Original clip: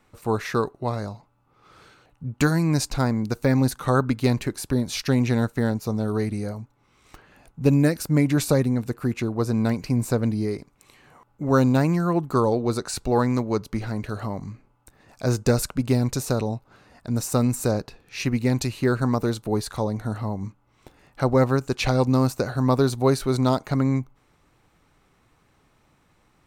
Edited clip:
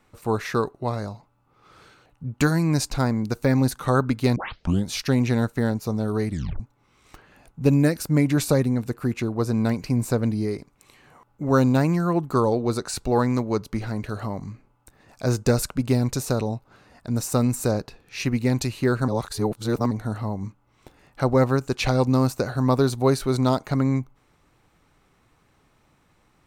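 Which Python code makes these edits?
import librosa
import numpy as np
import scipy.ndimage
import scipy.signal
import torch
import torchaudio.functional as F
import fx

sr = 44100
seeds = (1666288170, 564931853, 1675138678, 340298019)

y = fx.edit(x, sr, fx.tape_start(start_s=4.36, length_s=0.52),
    fx.tape_stop(start_s=6.31, length_s=0.29),
    fx.reverse_span(start_s=19.08, length_s=0.83), tone=tone)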